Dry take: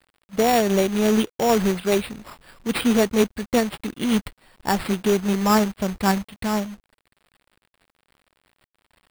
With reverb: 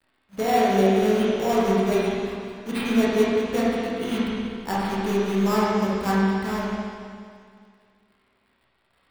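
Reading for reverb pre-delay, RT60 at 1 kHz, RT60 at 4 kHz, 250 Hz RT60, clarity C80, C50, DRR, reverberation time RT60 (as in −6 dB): 16 ms, 2.1 s, 2.1 s, 2.1 s, −1.5 dB, −4.0 dB, −8.0 dB, 2.1 s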